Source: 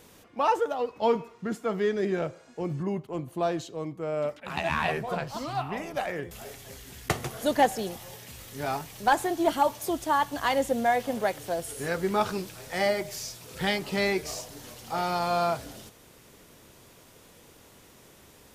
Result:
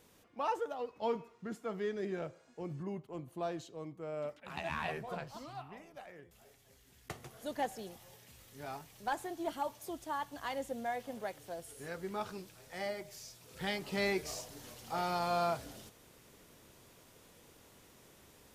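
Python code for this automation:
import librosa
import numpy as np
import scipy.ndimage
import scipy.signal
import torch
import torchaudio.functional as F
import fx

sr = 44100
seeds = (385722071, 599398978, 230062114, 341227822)

y = fx.gain(x, sr, db=fx.line((5.2, -10.5), (5.94, -20.0), (6.68, -20.0), (7.74, -13.5), (13.24, -13.5), (14.08, -6.5)))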